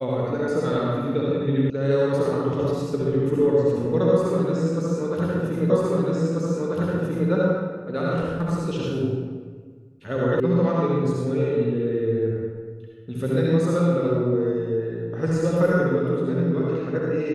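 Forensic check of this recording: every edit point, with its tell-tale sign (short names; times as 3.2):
1.7 sound cut off
5.7 repeat of the last 1.59 s
10.4 sound cut off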